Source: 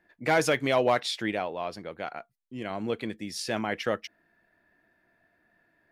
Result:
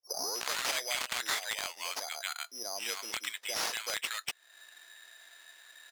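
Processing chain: tape start-up on the opening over 0.50 s; in parallel at -9.5 dB: integer overflow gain 18.5 dB; on the sum: tilt EQ +4 dB/octave; three bands offset in time mids, lows, highs 30/240 ms, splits 180/910 Hz; careless resampling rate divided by 8×, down none, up zero stuff; frequency weighting A; compression 3:1, threshold -37 dBFS, peak gain reduction 21 dB; overdrive pedal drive 12 dB, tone 2.8 kHz, clips at -5.5 dBFS

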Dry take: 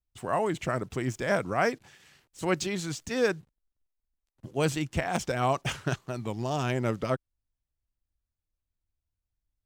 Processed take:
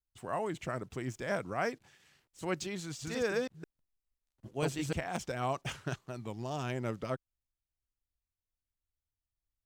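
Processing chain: 2.82–4.93 s: chunks repeated in reverse 164 ms, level -0.5 dB; trim -7.5 dB

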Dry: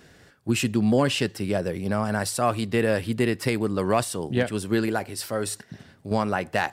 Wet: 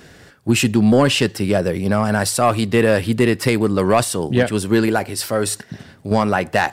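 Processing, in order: saturation -11.5 dBFS, distortion -21 dB; trim +8.5 dB

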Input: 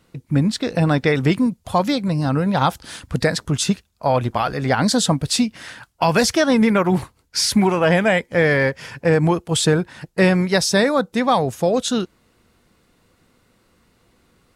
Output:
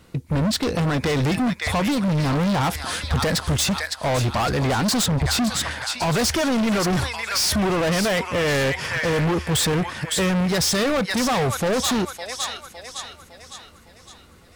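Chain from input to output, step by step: 5.06–5.71 s: tone controls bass +10 dB, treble -7 dB; feedback echo behind a high-pass 558 ms, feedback 47%, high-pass 1.4 kHz, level -8 dB; peak limiter -11.5 dBFS, peak gain reduction 11 dB; hard clipper -25.5 dBFS, distortion -6 dB; peaking EQ 77 Hz +13.5 dB 0.25 oct; trim +6.5 dB

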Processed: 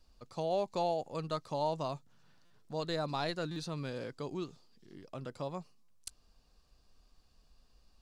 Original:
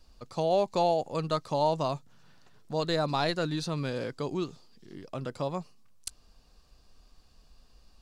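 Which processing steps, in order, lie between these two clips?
buffer glitch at 2.45/3.51/5.83 s, samples 256, times 8; trim -7 dB

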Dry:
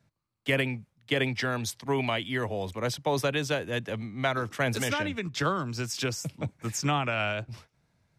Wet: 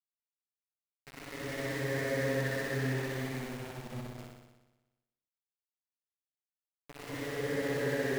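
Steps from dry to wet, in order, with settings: Chebyshev low-pass 1.8 kHz, order 4; Paulstretch 9.2×, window 0.25 s, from 0.31 s; small samples zeroed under -31.5 dBFS; on a send: flutter echo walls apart 10.5 m, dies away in 1.1 s; on the sum: trim -8 dB

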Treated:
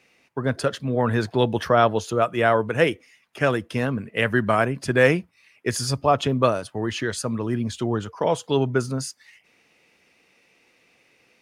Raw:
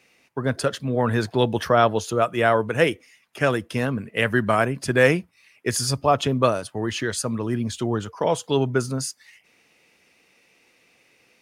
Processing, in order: treble shelf 6.5 kHz -6 dB

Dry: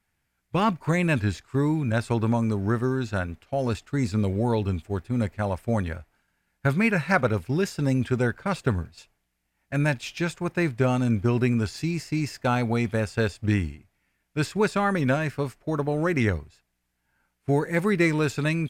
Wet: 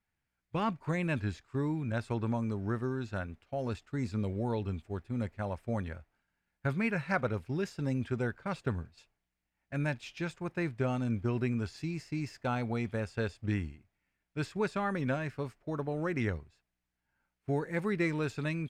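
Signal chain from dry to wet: treble shelf 7.8 kHz -10.5 dB; trim -9 dB

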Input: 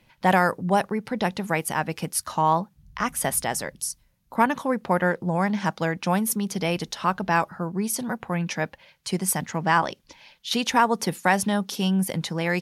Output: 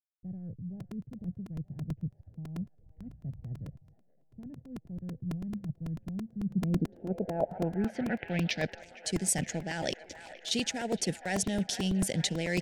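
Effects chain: reverse; compression 6:1, threshold -29 dBFS, peak gain reduction 14.5 dB; reverse; hysteresis with a dead band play -42.5 dBFS; on a send: feedback echo behind a band-pass 463 ms, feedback 75%, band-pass 1.2 kHz, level -12 dB; on the sum: low-pass sweep 120 Hz -> 7.9 kHz, 6.36–8.93 s; Butterworth band-stop 1.1 kHz, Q 1.1; crackling interface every 0.11 s, samples 128, repeat, from 0.80 s; trim +2 dB

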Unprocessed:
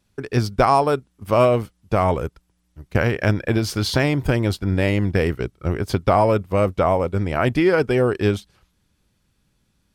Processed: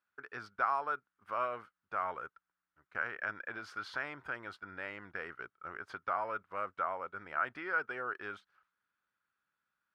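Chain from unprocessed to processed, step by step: in parallel at 0 dB: peak limiter -14 dBFS, peak gain reduction 10.5 dB; on the sum: band-pass filter 1.4 kHz, Q 4.4; trim -8.5 dB

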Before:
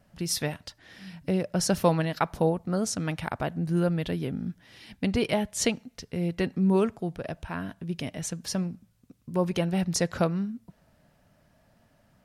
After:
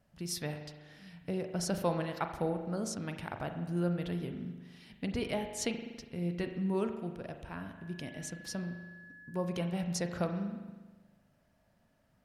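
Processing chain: 7.76–9.29 s: whistle 1.7 kHz -48 dBFS; spring tank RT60 1.3 s, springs 40 ms, chirp 30 ms, DRR 6 dB; trim -9 dB

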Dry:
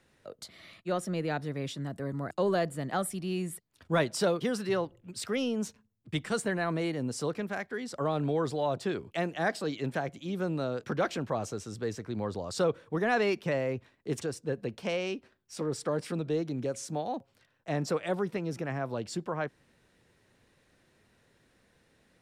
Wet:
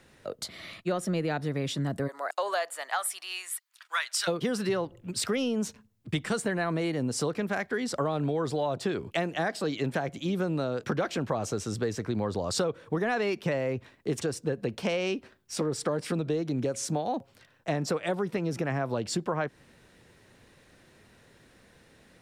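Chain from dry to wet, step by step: 2.07–4.27 s: high-pass 550 Hz -> 1.4 kHz 24 dB/octave; compression 6:1, threshold -34 dBFS, peak gain reduction 11 dB; trim +8.5 dB

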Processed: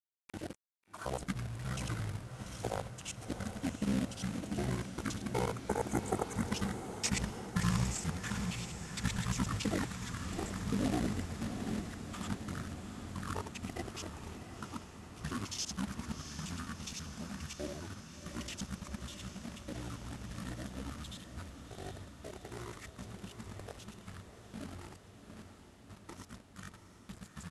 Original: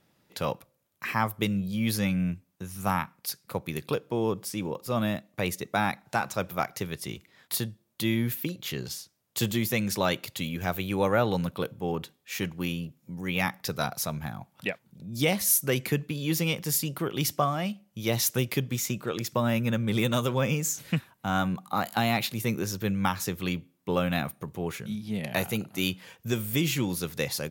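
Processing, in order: time reversed locally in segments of 63 ms; Doppler pass-by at 6.71 s, 24 m/s, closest 17 m; hum notches 50/100/150/200/250/300 Hz; gate -58 dBFS, range -22 dB; peaking EQ 370 Hz +9 dB 0.36 oct; gain riding within 5 dB 2 s; companded quantiser 4-bit; pitch shift -10.5 st; spectral replace 5.59–6.40 s, 2.3–6 kHz; echo that smears into a reverb 729 ms, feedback 69%, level -9 dB; trim +1.5 dB

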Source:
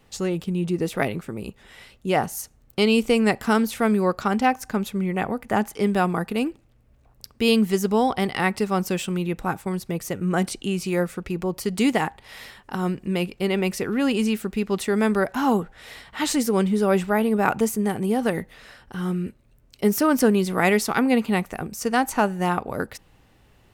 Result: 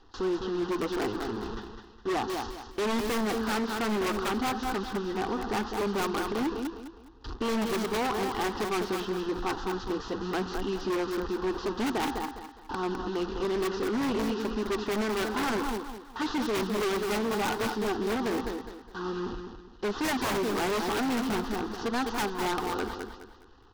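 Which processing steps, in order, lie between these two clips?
one-bit delta coder 32 kbps, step -27 dBFS; flange 0.95 Hz, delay 2.4 ms, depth 4.4 ms, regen +65%; gate with hold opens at -30 dBFS; low-pass 3.4 kHz 12 dB/octave; static phaser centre 600 Hz, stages 6; in parallel at -4 dB: integer overflow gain 23.5 dB; on the sum: feedback delay 206 ms, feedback 32%, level -7 dB; wavefolder -23.5 dBFS

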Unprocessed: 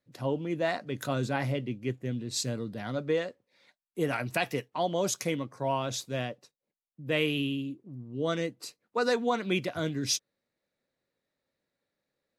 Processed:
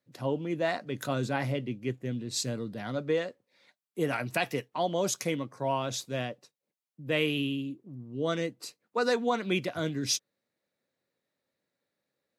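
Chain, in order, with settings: high-pass 93 Hz

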